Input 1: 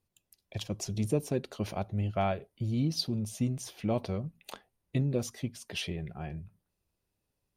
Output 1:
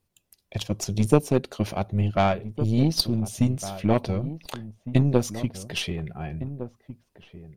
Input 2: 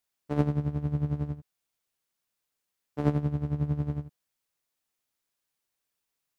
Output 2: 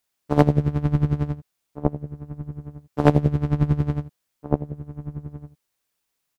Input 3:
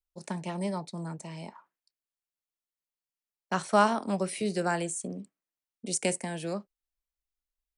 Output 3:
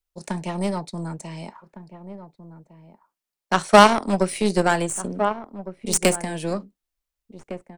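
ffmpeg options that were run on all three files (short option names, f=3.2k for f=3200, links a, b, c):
-filter_complex "[0:a]aeval=exprs='0.316*(cos(1*acos(clip(val(0)/0.316,-1,1)))-cos(1*PI/2))+0.0794*(cos(3*acos(clip(val(0)/0.316,-1,1)))-cos(3*PI/2))+0.002*(cos(4*acos(clip(val(0)/0.316,-1,1)))-cos(4*PI/2))+0.00794*(cos(6*acos(clip(val(0)/0.316,-1,1)))-cos(6*PI/2))+0.00282*(cos(7*acos(clip(val(0)/0.316,-1,1)))-cos(7*PI/2))':c=same,asplit=2[a][b];[b]adelay=1458,volume=-13dB,highshelf=f=4k:g=-32.8[c];[a][c]amix=inputs=2:normalize=0,apsyclip=22dB,volume=-1.5dB"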